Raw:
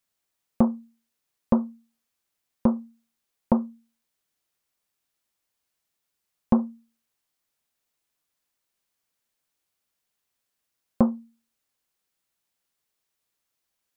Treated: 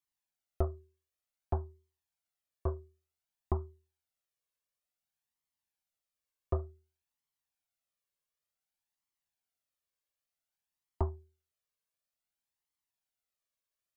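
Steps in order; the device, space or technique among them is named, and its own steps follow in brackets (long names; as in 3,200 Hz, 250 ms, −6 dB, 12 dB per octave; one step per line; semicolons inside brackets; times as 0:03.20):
alien voice (ring modulation 150 Hz; flanger 0.55 Hz, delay 0.9 ms, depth 1 ms, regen +21%)
level −5 dB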